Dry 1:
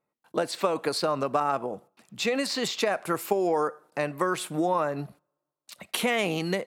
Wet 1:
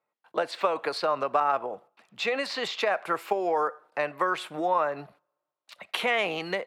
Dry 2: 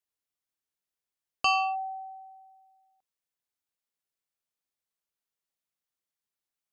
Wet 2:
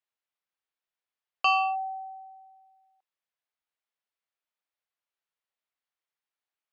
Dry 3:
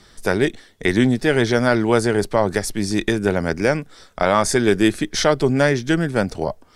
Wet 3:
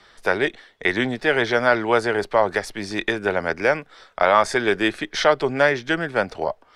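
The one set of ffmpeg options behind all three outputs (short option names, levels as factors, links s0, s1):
-filter_complex "[0:a]acrossover=split=470 4000:gain=0.2 1 0.158[s0][s1][s2];[s0][s1][s2]amix=inputs=3:normalize=0,volume=1.33"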